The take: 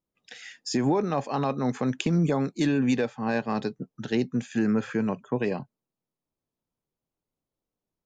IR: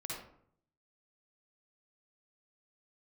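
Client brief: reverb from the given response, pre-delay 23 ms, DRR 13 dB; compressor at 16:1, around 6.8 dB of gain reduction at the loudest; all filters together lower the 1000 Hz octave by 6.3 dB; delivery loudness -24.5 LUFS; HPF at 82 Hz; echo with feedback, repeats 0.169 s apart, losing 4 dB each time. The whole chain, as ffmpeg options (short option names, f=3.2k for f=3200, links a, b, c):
-filter_complex "[0:a]highpass=82,equalizer=f=1k:t=o:g=-8.5,acompressor=threshold=-27dB:ratio=16,aecho=1:1:169|338|507|676|845|1014|1183|1352|1521:0.631|0.398|0.25|0.158|0.0994|0.0626|0.0394|0.0249|0.0157,asplit=2[a][b];[1:a]atrim=start_sample=2205,adelay=23[c];[b][c]afir=irnorm=-1:irlink=0,volume=-13.5dB[d];[a][d]amix=inputs=2:normalize=0,volume=6.5dB"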